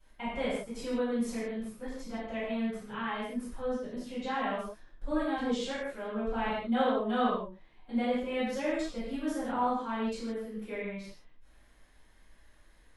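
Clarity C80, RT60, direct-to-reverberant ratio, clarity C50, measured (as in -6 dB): 2.0 dB, no single decay rate, -16.0 dB, -1.0 dB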